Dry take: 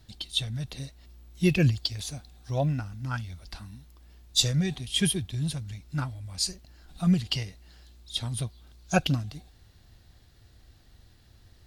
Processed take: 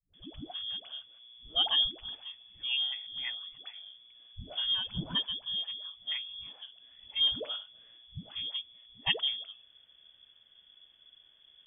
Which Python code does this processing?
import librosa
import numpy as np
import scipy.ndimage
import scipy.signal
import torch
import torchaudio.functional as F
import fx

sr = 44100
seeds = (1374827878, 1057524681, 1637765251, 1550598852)

y = fx.freq_invert(x, sr, carrier_hz=3400)
y = fx.dispersion(y, sr, late='highs', ms=138.0, hz=320.0)
y = y * librosa.db_to_amplitude(-6.0)